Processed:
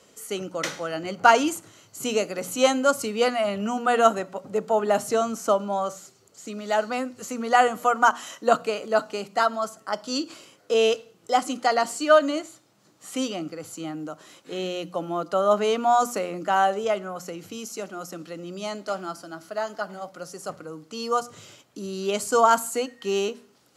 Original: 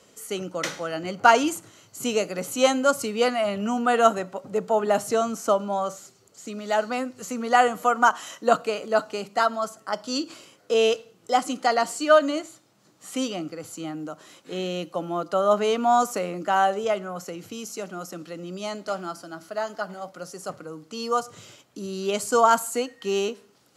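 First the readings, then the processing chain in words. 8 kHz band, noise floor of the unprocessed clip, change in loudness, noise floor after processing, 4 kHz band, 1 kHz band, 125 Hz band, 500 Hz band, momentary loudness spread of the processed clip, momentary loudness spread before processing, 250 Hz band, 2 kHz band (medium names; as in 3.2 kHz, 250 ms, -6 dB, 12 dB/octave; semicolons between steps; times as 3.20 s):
0.0 dB, -59 dBFS, 0.0 dB, -59 dBFS, 0.0 dB, 0.0 dB, -1.0 dB, 0.0 dB, 17 LU, 17 LU, -0.5 dB, 0.0 dB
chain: hum notches 60/120/180/240 Hz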